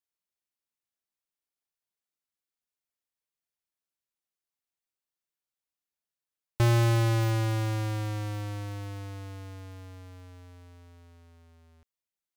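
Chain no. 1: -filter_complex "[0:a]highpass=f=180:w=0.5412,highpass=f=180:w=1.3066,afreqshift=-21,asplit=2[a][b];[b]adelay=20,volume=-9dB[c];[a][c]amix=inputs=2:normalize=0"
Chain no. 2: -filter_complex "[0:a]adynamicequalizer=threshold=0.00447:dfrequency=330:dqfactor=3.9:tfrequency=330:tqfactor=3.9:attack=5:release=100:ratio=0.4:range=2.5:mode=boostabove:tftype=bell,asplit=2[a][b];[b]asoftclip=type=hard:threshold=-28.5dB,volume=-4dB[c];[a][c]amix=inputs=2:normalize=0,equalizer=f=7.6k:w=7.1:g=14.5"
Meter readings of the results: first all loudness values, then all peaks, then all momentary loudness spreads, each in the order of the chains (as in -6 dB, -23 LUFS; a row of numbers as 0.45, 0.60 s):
-33.5, -25.0 LUFS; -18.0, -15.5 dBFS; 21, 20 LU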